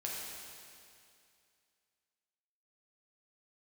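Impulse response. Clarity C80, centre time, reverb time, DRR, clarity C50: 0.5 dB, 132 ms, 2.4 s, −4.5 dB, −1.5 dB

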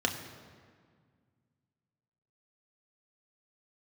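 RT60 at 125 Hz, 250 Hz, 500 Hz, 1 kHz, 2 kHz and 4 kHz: 2.8, 2.5, 1.9, 1.8, 1.6, 1.3 seconds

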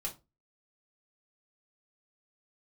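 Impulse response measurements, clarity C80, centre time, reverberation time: 22.5 dB, 13 ms, 0.25 s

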